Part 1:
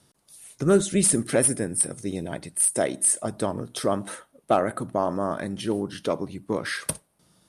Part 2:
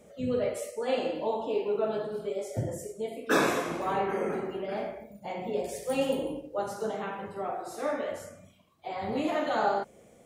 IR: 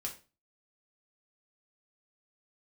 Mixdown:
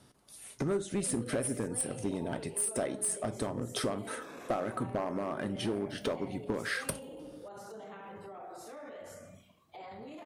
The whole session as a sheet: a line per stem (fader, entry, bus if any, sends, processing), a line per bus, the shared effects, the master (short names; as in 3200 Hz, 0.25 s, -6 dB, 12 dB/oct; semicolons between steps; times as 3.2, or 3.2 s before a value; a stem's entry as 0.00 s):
+0.5 dB, 0.00 s, send -5.5 dB, high shelf 3800 Hz -7.5 dB; compressor 5:1, threshold -33 dBFS, peak gain reduction 17 dB
-0.5 dB, 0.90 s, no send, compressor, threshold -34 dBFS, peak gain reduction 14 dB; limiter -39 dBFS, peak gain reduction 14.5 dB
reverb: on, RT60 0.35 s, pre-delay 3 ms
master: one-sided clip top -26 dBFS